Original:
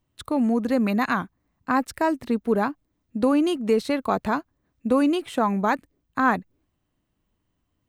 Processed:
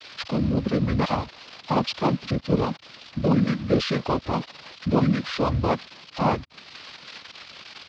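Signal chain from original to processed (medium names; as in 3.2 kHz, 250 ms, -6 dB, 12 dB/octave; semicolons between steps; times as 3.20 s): zero-crossing glitches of -19.5 dBFS; noise-vocoded speech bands 6; pitch shift -8.5 st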